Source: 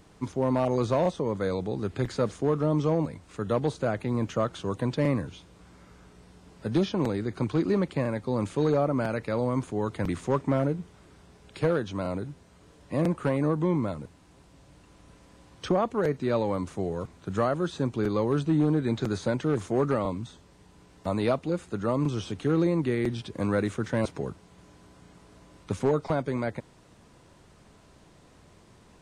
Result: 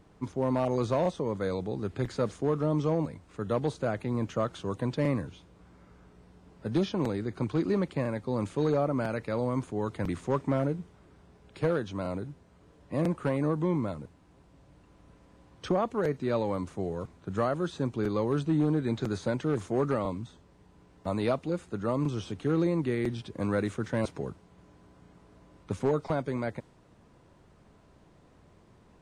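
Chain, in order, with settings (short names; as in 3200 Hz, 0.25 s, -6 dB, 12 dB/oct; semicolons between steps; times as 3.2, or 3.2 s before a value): mismatched tape noise reduction decoder only; gain -2.5 dB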